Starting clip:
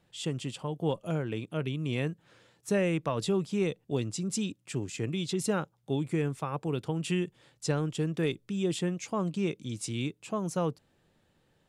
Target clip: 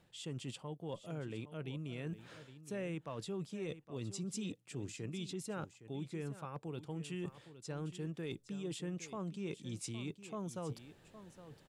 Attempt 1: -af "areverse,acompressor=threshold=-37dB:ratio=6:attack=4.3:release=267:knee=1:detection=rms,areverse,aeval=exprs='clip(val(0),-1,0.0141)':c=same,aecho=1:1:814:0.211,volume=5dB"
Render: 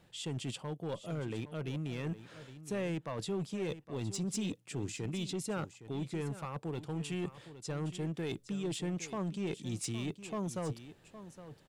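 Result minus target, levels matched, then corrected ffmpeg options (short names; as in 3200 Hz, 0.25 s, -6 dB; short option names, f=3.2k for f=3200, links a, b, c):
compressor: peak gain reduction -6 dB
-af "areverse,acompressor=threshold=-44dB:ratio=6:attack=4.3:release=267:knee=1:detection=rms,areverse,aeval=exprs='clip(val(0),-1,0.0141)':c=same,aecho=1:1:814:0.211,volume=5dB"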